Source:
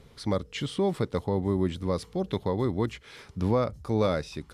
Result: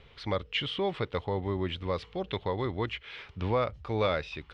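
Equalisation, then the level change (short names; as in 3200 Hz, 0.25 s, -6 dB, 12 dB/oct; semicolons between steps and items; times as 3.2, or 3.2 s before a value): synth low-pass 2900 Hz, resonance Q 2.5; bell 210 Hz -9 dB 1.7 oct; 0.0 dB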